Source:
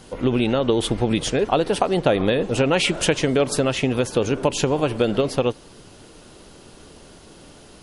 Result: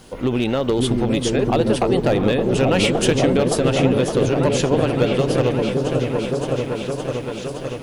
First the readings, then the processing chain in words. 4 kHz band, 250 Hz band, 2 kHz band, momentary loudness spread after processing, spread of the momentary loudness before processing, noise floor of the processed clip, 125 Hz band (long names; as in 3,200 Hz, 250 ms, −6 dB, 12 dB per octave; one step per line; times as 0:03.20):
+0.5 dB, +4.0 dB, +0.5 dB, 8 LU, 3 LU, −30 dBFS, +5.5 dB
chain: hard clipping −12.5 dBFS, distortion −19 dB
echo whose low-pass opens from repeat to repeat 566 ms, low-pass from 400 Hz, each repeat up 1 octave, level 0 dB
bit reduction 10 bits